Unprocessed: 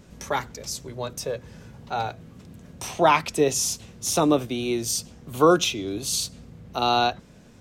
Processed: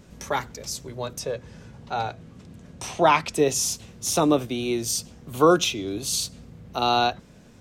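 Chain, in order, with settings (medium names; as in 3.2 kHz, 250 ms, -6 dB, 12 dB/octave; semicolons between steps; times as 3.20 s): 1.19–3.34 s: low-pass 9.8 kHz 12 dB/octave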